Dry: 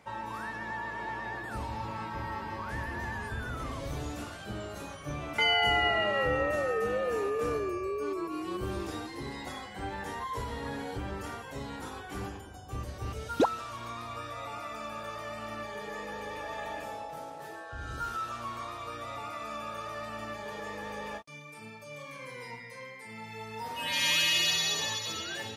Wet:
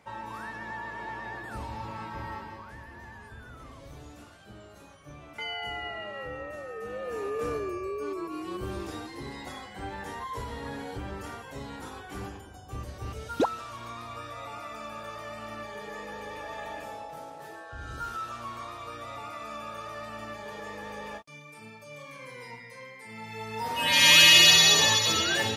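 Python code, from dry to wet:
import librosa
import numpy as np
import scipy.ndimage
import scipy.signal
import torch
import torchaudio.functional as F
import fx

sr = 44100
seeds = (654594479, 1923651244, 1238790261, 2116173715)

y = fx.gain(x, sr, db=fx.line((2.33, -1.0), (2.77, -10.0), (6.69, -10.0), (7.37, -0.5), (22.94, -0.5), (24.23, 11.0)))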